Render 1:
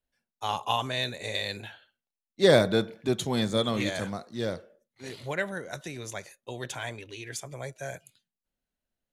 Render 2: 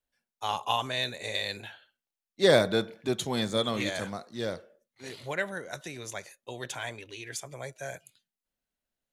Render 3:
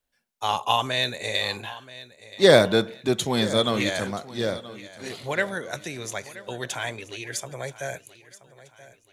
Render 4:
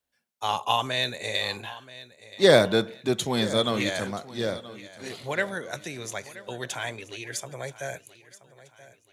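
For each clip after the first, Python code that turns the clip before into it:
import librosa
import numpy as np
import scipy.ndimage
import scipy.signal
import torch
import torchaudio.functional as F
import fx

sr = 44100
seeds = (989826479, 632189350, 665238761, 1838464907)

y1 = fx.low_shelf(x, sr, hz=330.0, db=-5.0)
y2 = fx.echo_feedback(y1, sr, ms=978, feedback_pct=41, wet_db=-17.5)
y2 = F.gain(torch.from_numpy(y2), 6.0).numpy()
y3 = scipy.signal.sosfilt(scipy.signal.butter(2, 60.0, 'highpass', fs=sr, output='sos'), y2)
y3 = F.gain(torch.from_numpy(y3), -2.0).numpy()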